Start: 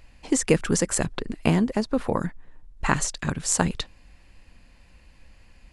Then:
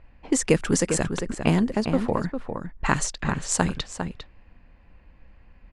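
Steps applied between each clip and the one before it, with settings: level-controlled noise filter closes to 1.7 kHz, open at -18 dBFS; echo from a far wall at 69 m, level -7 dB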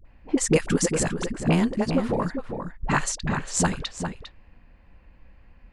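phase dispersion highs, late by 53 ms, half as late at 460 Hz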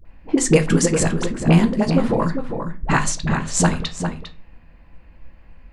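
reverberation RT60 0.35 s, pre-delay 6 ms, DRR 7.5 dB; trim +4 dB

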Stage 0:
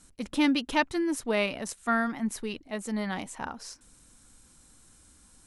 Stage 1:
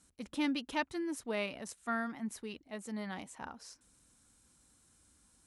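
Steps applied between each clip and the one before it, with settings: high-pass 47 Hz; trim -9 dB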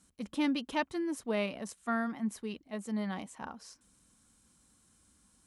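dynamic bell 540 Hz, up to +4 dB, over -48 dBFS, Q 0.82; small resonant body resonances 200/1100/3100 Hz, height 6 dB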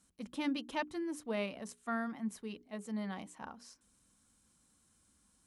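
hum notches 60/120/180/240/300/360/420 Hz; trim -4 dB

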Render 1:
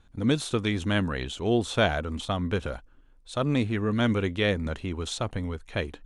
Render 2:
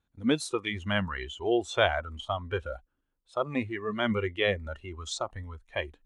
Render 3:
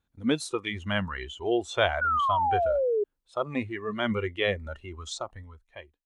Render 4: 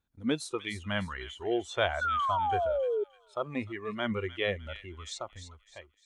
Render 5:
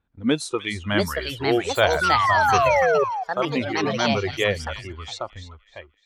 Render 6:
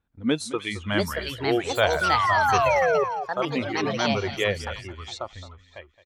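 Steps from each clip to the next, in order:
high-pass 76 Hz 6 dB/octave; spectral noise reduction 16 dB
fade out at the end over 1.07 s; painted sound fall, 2.01–3.04 s, 400–1500 Hz -25 dBFS
feedback echo behind a high-pass 302 ms, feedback 38%, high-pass 2.4 kHz, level -9 dB; trim -4 dB
level-controlled noise filter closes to 2.5 kHz, open at -28.5 dBFS; ever faster or slower copies 765 ms, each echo +5 st, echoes 2; trim +8.5 dB
delay 217 ms -16.5 dB; trim -2.5 dB

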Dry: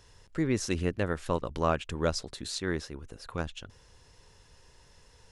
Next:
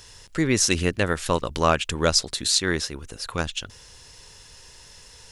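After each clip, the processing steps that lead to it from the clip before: treble shelf 2 kHz +11.5 dB; trim +5.5 dB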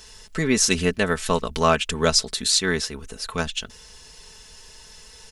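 comb 4.6 ms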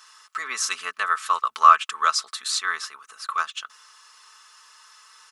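resonant high-pass 1.2 kHz, resonance Q 13; trim -6.5 dB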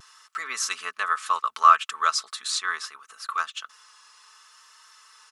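vibrato 0.68 Hz 25 cents; trim -2 dB

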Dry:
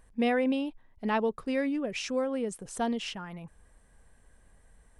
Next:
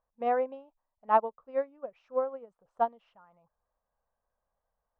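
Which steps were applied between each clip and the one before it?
low-pass 2.6 kHz 12 dB/octave; high-order bell 830 Hz +15.5 dB; upward expansion 2.5:1, over -26 dBFS; trim -6.5 dB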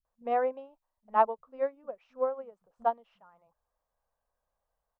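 bands offset in time lows, highs 50 ms, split 200 Hz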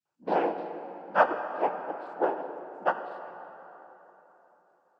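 noise-vocoded speech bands 8; plate-style reverb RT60 3.8 s, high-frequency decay 0.6×, DRR 7.5 dB; trim +2 dB

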